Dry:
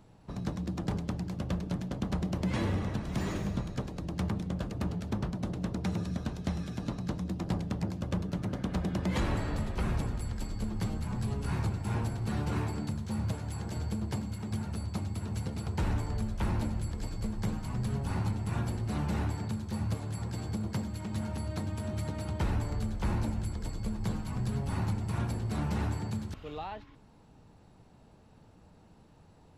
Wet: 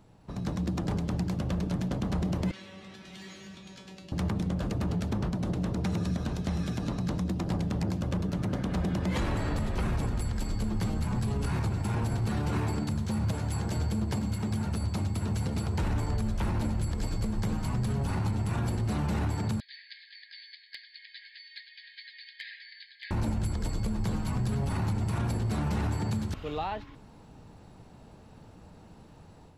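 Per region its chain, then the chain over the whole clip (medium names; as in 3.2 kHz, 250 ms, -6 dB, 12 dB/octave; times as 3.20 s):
2.51–4.12 s: frequency weighting D + compression 10:1, threshold -38 dBFS + feedback comb 190 Hz, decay 0.33 s, mix 90%
19.60–23.11 s: brick-wall FIR band-pass 1.6–5 kHz + peaking EQ 2.7 kHz -11 dB 0.23 oct + hard clipper -37 dBFS
whole clip: level rider gain up to 6.5 dB; peak limiter -22 dBFS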